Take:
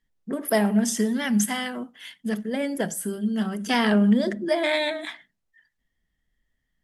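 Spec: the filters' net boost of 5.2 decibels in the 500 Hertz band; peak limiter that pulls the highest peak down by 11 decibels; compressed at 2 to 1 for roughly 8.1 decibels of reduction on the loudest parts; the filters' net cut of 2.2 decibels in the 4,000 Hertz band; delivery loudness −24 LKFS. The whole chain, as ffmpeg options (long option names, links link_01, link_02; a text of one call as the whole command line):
ffmpeg -i in.wav -af "equalizer=frequency=500:width_type=o:gain=7,equalizer=frequency=4000:width_type=o:gain=-3,acompressor=threshold=-28dB:ratio=2,volume=9.5dB,alimiter=limit=-16dB:level=0:latency=1" out.wav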